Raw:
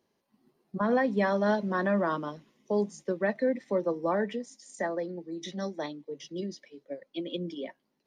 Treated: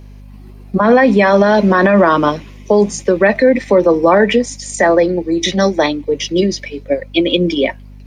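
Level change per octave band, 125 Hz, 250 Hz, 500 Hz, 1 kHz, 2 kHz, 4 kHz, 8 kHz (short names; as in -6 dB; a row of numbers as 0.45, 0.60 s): +17.0, +17.5, +18.0, +17.5, +18.5, +23.0, +23.5 dB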